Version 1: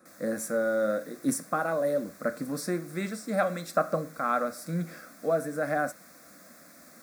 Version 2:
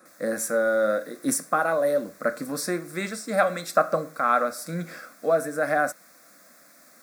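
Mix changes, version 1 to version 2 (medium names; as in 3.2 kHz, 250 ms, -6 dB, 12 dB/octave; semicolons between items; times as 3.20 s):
speech +7.0 dB; master: add bass shelf 310 Hz -10.5 dB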